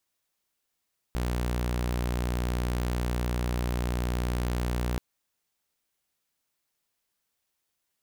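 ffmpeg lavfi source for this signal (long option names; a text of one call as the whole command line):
ffmpeg -f lavfi -i "aevalsrc='0.0631*(2*mod(60.6*t,1)-1)':duration=3.83:sample_rate=44100" out.wav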